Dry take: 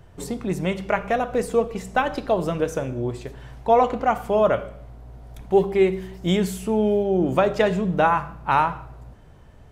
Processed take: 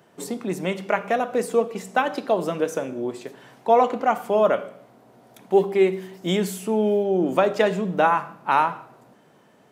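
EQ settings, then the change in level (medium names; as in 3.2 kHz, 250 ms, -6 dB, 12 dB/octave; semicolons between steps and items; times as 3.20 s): high-pass 190 Hz 24 dB/octave; treble shelf 9.8 kHz +4 dB; 0.0 dB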